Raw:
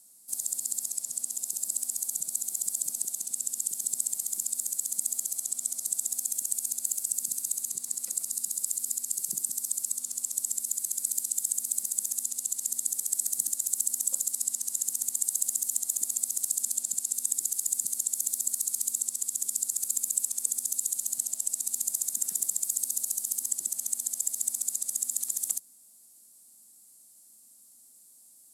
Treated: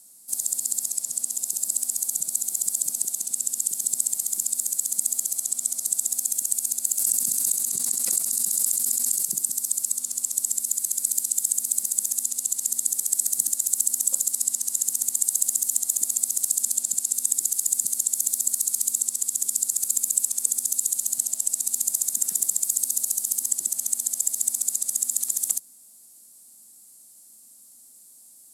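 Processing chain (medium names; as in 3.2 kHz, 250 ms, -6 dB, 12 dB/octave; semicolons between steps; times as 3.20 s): 6.99–9.28 s: swell ahead of each attack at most 21 dB/s; trim +5.5 dB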